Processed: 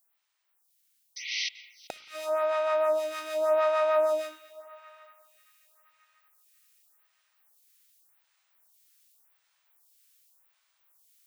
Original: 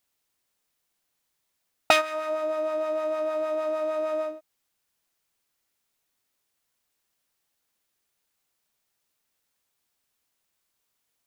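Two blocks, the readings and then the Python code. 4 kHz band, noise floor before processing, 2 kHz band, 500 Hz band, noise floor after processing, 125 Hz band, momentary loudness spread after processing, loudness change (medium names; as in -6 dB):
-1.5 dB, -78 dBFS, -4.5 dB, +0.5 dB, -73 dBFS, no reading, 17 LU, -1.0 dB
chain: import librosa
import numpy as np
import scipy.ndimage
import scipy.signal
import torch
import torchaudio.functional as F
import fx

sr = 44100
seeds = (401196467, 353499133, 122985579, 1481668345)

p1 = scipy.signal.sosfilt(scipy.signal.butter(2, 800.0, 'highpass', fs=sr, output='sos'), x)
p2 = fx.high_shelf(p1, sr, hz=9700.0, db=5.5)
p3 = fx.rider(p2, sr, range_db=3, speed_s=2.0)
p4 = fx.spec_paint(p3, sr, seeds[0], shape='noise', start_s=1.16, length_s=0.33, low_hz=1900.0, high_hz=6200.0, level_db=-35.0)
p5 = fx.gate_flip(p4, sr, shuts_db=-19.0, range_db=-31)
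p6 = p5 + fx.echo_banded(p5, sr, ms=386, feedback_pct=69, hz=2100.0, wet_db=-16, dry=0)
p7 = fx.rev_spring(p6, sr, rt60_s=1.8, pass_ms=(34, 59), chirp_ms=70, drr_db=17.5)
p8 = fx.stagger_phaser(p7, sr, hz=0.87)
y = F.gain(torch.from_numpy(p8), 7.0).numpy()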